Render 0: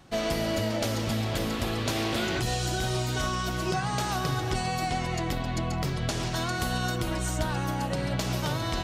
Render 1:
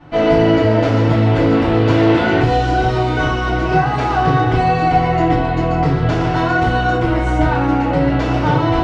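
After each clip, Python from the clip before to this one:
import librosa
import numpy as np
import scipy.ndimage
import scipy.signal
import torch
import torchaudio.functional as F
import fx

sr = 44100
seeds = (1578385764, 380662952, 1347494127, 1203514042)

y = scipy.signal.sosfilt(scipy.signal.butter(2, 2000.0, 'lowpass', fs=sr, output='sos'), x)
y = fx.rev_fdn(y, sr, rt60_s=0.56, lf_ratio=0.75, hf_ratio=0.9, size_ms=20.0, drr_db=-9.5)
y = y * 10.0 ** (4.5 / 20.0)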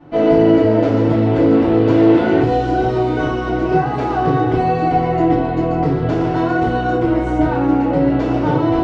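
y = fx.peak_eq(x, sr, hz=350.0, db=11.0, octaves=2.3)
y = y * 10.0 ** (-8.0 / 20.0)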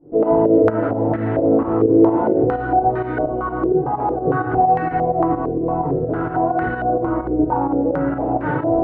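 y = fx.volume_shaper(x, sr, bpm=129, per_beat=2, depth_db=-9, release_ms=123.0, shape='fast start')
y = fx.filter_held_lowpass(y, sr, hz=4.4, low_hz=430.0, high_hz=1700.0)
y = y * 10.0 ** (-6.0 / 20.0)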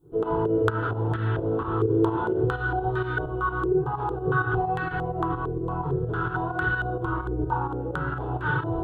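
y = fx.curve_eq(x, sr, hz=(130.0, 270.0, 390.0, 600.0, 980.0, 1500.0, 2100.0, 3400.0, 5300.0, 7600.0), db=(0, -20, -3, -21, -3, 3, -12, 13, 0, 13))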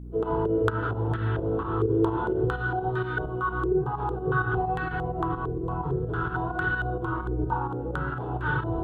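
y = fx.add_hum(x, sr, base_hz=60, snr_db=12)
y = y * 10.0 ** (-1.5 / 20.0)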